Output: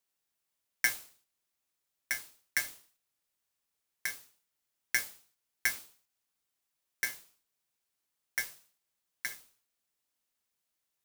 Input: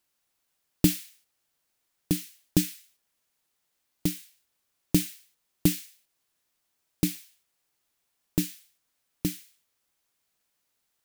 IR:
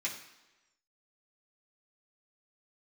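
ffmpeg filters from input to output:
-af "bass=f=250:g=1,treble=f=4k:g=3,flanger=delay=7.2:depth=6.2:regen=-67:speed=1.2:shape=sinusoidal,aeval=exprs='val(0)*sgn(sin(2*PI*1900*n/s))':c=same,volume=-5dB"

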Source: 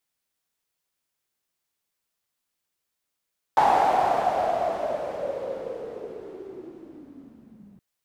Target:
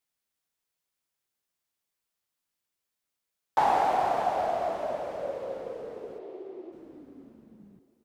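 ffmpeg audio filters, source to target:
-filter_complex "[0:a]asplit=3[a][b][c];[a]afade=t=out:st=6.18:d=0.02[d];[b]highpass=330,equalizer=f=360:t=q:w=4:g=5,equalizer=f=680:t=q:w=4:g=8,equalizer=f=1.5k:t=q:w=4:g=-9,lowpass=f=4.4k:w=0.5412,lowpass=f=4.4k:w=1.3066,afade=t=in:st=6.18:d=0.02,afade=t=out:st=6.71:d=0.02[e];[c]afade=t=in:st=6.71:d=0.02[f];[d][e][f]amix=inputs=3:normalize=0,aecho=1:1:620|1240|1860:0.15|0.0434|0.0126,volume=-4dB"

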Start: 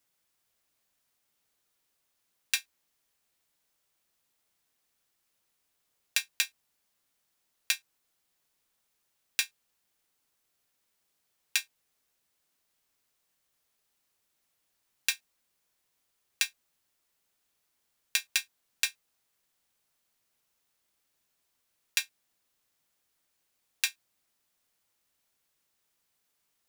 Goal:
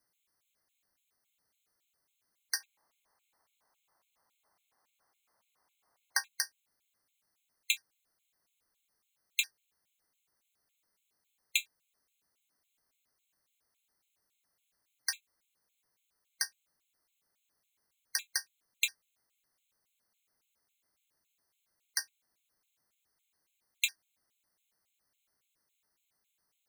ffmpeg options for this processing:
-filter_complex "[0:a]asettb=1/sr,asplit=3[a][b][c];[a]atrim=end=2.604[d];[b]atrim=start=2.6:end=6.28,asetpts=PTS-STARTPTS,afade=t=in:d=0.004:c=qsin,afade=t=out:st=3.676:d=0.004:c=qsin,equalizer=f=910:t=o:w=1.6:g=14.5[e];[c]atrim=start=6.276[f];[d][e]acrossfade=d=0.004:c1=hsin:c2=qsin[g];[g][f]acrossfade=d=0.004:c1=qsin:c2=hsin,afftfilt=real='re*gt(sin(2*PI*3.6*pts/sr)*(1-2*mod(floor(b*sr/1024/2100),2)),0)':imag='im*gt(sin(2*PI*3.6*pts/sr)*(1-2*mod(floor(b*sr/1024/2100),2)),0)':win_size=1024:overlap=0.75"

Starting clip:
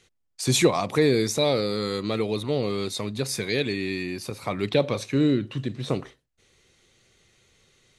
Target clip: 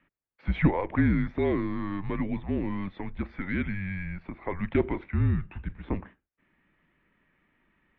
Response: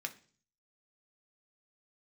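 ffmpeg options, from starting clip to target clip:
-af "aeval=exprs='0.447*(cos(1*acos(clip(val(0)/0.447,-1,1)))-cos(1*PI/2))+0.0224*(cos(3*acos(clip(val(0)/0.447,-1,1)))-cos(3*PI/2))':c=same,highpass=f=160:t=q:w=0.5412,highpass=f=160:t=q:w=1.307,lowpass=f=2.5k:t=q:w=0.5176,lowpass=f=2.5k:t=q:w=0.7071,lowpass=f=2.5k:t=q:w=1.932,afreqshift=-190,volume=-1.5dB"

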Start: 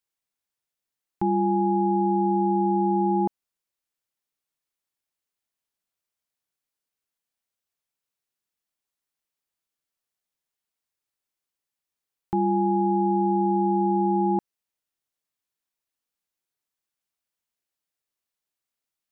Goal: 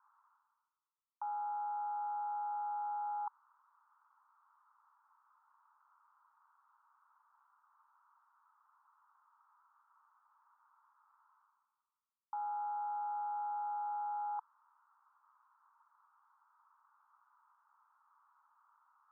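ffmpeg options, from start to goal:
-af "areverse,acompressor=mode=upward:threshold=-25dB:ratio=2.5,areverse,asoftclip=type=tanh:threshold=-14.5dB,asuperpass=centerf=1100:order=8:qfactor=2.2,volume=-2.5dB"

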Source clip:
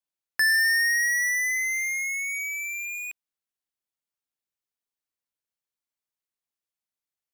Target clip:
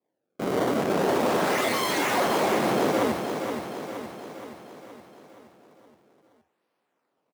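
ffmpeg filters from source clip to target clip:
-filter_complex "[0:a]lowpass=2.8k,acrusher=samples=29:mix=1:aa=0.000001:lfo=1:lforange=46.4:lforate=0.41,aeval=exprs='(mod(47.3*val(0)+1,2)-1)/47.3':c=same,acontrast=64,asplit=2[a][b];[b]aecho=0:1:22|70:0.316|0.168[c];[a][c]amix=inputs=2:normalize=0,aeval=exprs='0.0168*(abs(mod(val(0)/0.0168+3,4)-2)-1)':c=same,highpass=180,equalizer=f=490:w=0.39:g=10,asplit=2[d][e];[e]aecho=0:1:471|942|1413|1884|2355|2826|3297:0.447|0.25|0.14|0.0784|0.0439|0.0246|0.0138[f];[d][f]amix=inputs=2:normalize=0,dynaudnorm=f=270:g=3:m=5dB,volume=4.5dB"

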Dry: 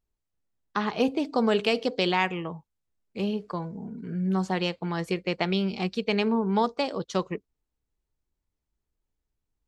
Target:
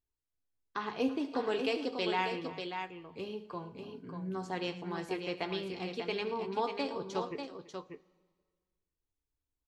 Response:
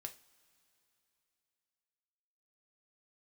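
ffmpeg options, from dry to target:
-filter_complex "[0:a]aecho=1:1:71|109|333|591:0.168|0.141|0.119|0.473[a];[1:a]atrim=start_sample=2205,asetrate=88200,aresample=44100[b];[a][b]afir=irnorm=-1:irlink=0,volume=1.5dB"

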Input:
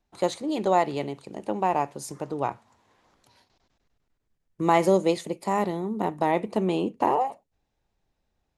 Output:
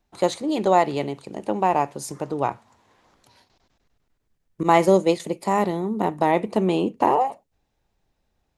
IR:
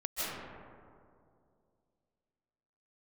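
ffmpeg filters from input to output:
-filter_complex "[0:a]asettb=1/sr,asplit=3[a][b][c];[a]atrim=end=4.634[d];[b]atrim=start=4.63:end=5.2,asetpts=PTS-STARTPTS,afade=t=in:d=0.004:c=qsin,afade=t=out:st=0.566:d=0.004:c=qsin,agate=range=-33dB:threshold=-20dB:ratio=3:detection=peak[e];[c]atrim=start=5.196[f];[d][e]acrossfade=d=0.004:c1=hsin:c2=qsin[g];[g][f]acrossfade=d=0.004:c1=qsin:c2=hsin,volume=4dB"

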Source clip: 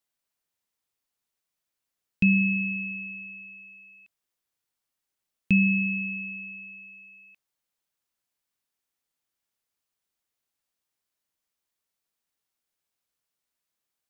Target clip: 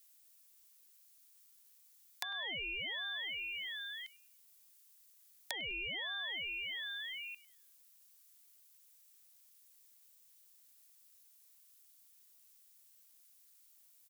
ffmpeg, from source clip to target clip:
-filter_complex "[0:a]crystalizer=i=9.5:c=0,acompressor=threshold=-26dB:ratio=10,asplit=2[a][b];[b]adelay=101,lowpass=f=2.4k:p=1,volume=-15dB,asplit=2[c][d];[d]adelay=101,lowpass=f=2.4k:p=1,volume=0.46,asplit=2[e][f];[f]adelay=101,lowpass=f=2.4k:p=1,volume=0.46,asplit=2[g][h];[h]adelay=101,lowpass=f=2.4k:p=1,volume=0.46[i];[c][e][g][i]amix=inputs=4:normalize=0[j];[a][j]amix=inputs=2:normalize=0,acrossover=split=210|1500[k][l][m];[k]acompressor=threshold=-46dB:ratio=4[n];[l]acompressor=threshold=-55dB:ratio=4[o];[m]acompressor=threshold=-39dB:ratio=4[p];[n][o][p]amix=inputs=3:normalize=0,equalizer=f=220:t=o:w=0.77:g=-4,aeval=exprs='val(0)*sin(2*PI*560*n/s+560*0.75/1.3*sin(2*PI*1.3*n/s))':c=same"

